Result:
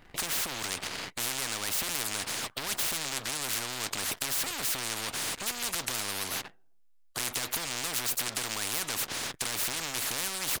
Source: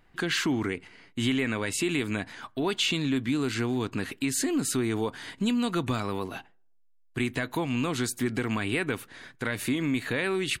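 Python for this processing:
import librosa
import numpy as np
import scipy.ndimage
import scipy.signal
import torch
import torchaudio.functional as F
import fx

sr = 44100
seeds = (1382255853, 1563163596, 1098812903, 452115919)

y = fx.leveller(x, sr, passes=3)
y = fx.spectral_comp(y, sr, ratio=10.0)
y = y * 10.0 ** (2.0 / 20.0)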